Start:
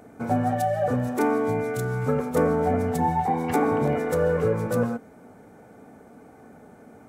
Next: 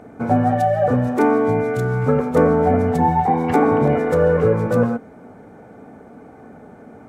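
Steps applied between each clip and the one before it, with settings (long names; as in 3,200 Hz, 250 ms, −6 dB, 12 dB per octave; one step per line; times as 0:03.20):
low-pass filter 2,400 Hz 6 dB per octave
level +7 dB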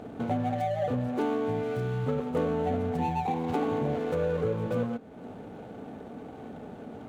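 running median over 25 samples
downward compressor 2 to 1, threshold −36 dBFS, peak gain reduction 14 dB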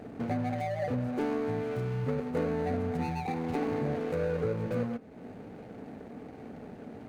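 running median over 41 samples
level −1.5 dB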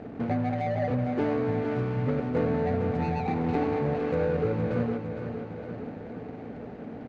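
high-frequency loss of the air 150 metres
repeating echo 460 ms, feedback 59%, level −8 dB
level +4 dB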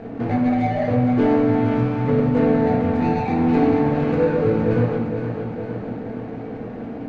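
convolution reverb RT60 0.85 s, pre-delay 4 ms, DRR −1 dB
level +4 dB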